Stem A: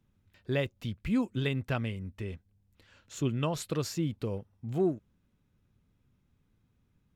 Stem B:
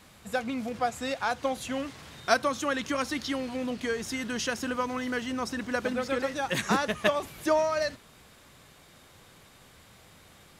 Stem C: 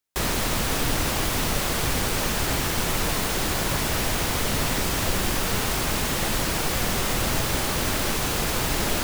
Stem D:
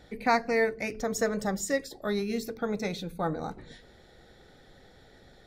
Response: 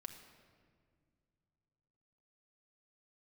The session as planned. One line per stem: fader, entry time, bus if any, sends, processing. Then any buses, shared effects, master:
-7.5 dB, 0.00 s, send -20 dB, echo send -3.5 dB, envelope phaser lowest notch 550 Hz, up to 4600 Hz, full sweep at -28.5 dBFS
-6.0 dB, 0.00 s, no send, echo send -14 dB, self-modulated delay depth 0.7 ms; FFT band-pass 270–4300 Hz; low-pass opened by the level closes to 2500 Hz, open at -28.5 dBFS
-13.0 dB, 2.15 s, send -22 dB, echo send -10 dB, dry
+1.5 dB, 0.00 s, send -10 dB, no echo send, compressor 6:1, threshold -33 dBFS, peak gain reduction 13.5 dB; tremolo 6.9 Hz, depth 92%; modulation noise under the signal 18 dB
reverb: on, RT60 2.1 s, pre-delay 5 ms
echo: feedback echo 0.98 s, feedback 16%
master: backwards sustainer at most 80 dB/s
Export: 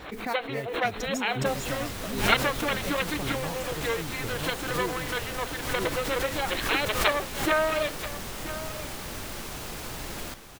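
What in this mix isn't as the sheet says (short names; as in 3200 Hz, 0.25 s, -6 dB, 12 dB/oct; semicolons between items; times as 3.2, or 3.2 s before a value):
stem B -6.0 dB -> +2.0 dB; stem C: entry 2.15 s -> 1.30 s; stem D: send off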